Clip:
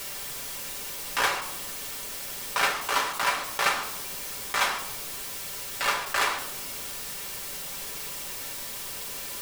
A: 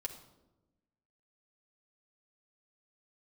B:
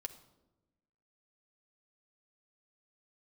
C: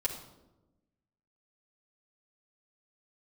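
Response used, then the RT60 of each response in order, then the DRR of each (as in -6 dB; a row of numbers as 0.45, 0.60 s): A; 1.0, 1.0, 1.0 s; 0.5, 5.0, -4.5 dB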